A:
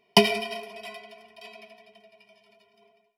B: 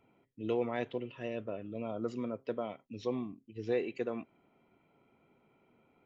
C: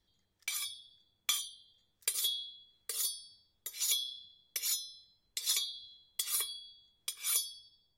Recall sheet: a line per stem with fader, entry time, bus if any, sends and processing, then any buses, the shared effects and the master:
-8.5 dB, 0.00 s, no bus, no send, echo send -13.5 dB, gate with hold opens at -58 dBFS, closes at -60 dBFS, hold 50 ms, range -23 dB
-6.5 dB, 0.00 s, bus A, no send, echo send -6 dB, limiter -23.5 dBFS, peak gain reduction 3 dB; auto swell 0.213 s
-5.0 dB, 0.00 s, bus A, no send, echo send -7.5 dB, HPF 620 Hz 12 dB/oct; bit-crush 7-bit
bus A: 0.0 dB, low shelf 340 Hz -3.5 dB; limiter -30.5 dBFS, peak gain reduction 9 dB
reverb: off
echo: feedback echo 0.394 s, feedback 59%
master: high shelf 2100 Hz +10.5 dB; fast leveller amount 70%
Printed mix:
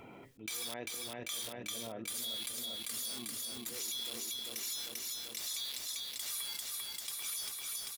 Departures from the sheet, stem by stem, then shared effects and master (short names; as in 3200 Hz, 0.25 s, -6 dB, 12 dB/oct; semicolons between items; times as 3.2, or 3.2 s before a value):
stem A: muted; stem B -6.5 dB -> -16.5 dB; master: missing high shelf 2100 Hz +10.5 dB